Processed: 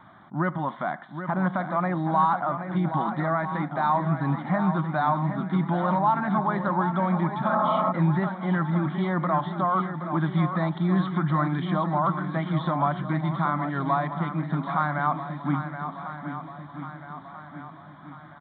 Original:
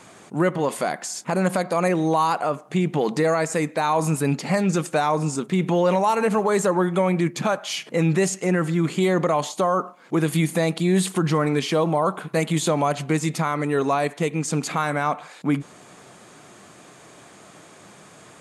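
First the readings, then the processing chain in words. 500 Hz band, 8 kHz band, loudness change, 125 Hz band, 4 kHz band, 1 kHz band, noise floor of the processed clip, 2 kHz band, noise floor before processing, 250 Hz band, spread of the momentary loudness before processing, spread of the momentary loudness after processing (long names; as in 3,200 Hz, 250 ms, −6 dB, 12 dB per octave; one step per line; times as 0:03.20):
−9.0 dB, below −40 dB, −3.5 dB, −1.0 dB, −12.5 dB, 0.0 dB, −45 dBFS, −3.5 dB, −48 dBFS, −3.0 dB, 5 LU, 14 LU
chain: phaser with its sweep stopped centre 1,100 Hz, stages 4
downsampling to 8,000 Hz
on a send: feedback echo with a long and a short gap by turns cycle 1,289 ms, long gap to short 1.5 to 1, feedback 45%, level −9 dB
on the sum: healed spectral selection 0:07.52–0:07.89, 220–1,400 Hz before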